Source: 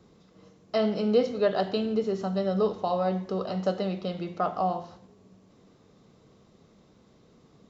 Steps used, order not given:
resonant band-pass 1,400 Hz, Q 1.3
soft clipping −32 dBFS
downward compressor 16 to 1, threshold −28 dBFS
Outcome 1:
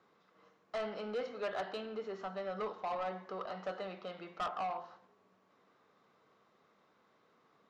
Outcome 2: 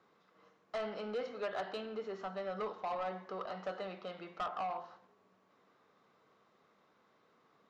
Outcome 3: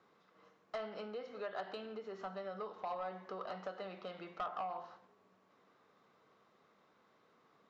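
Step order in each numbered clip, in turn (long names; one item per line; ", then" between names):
resonant band-pass, then soft clipping, then downward compressor
resonant band-pass, then downward compressor, then soft clipping
downward compressor, then resonant band-pass, then soft clipping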